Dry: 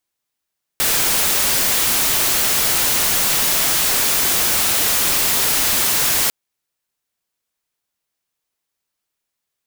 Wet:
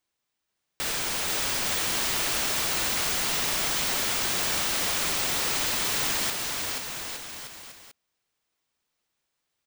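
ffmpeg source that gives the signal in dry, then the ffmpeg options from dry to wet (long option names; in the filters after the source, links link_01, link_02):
-f lavfi -i "anoisesrc=color=white:amplitude=0.245:duration=5.5:sample_rate=44100:seed=1"
-af "equalizer=frequency=14000:width_type=o:width=0.87:gain=-11.5,alimiter=limit=-21.5dB:level=0:latency=1,aecho=1:1:480|864|1171|1417|1614:0.631|0.398|0.251|0.158|0.1"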